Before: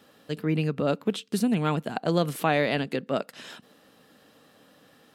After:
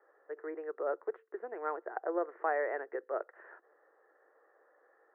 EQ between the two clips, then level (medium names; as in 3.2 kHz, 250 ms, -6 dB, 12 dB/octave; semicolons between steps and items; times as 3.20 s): Chebyshev band-pass 350–1900 Hz, order 5; -6.5 dB